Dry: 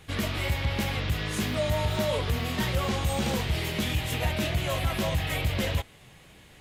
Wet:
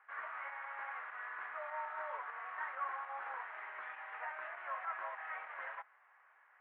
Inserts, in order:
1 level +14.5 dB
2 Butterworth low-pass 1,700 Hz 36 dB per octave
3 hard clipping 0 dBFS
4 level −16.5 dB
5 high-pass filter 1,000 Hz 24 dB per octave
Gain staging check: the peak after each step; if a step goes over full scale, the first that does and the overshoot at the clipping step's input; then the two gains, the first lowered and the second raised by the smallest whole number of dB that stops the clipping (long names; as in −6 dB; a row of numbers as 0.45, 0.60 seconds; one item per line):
−3.5, −4.0, −4.0, −20.5, −27.5 dBFS
no step passes full scale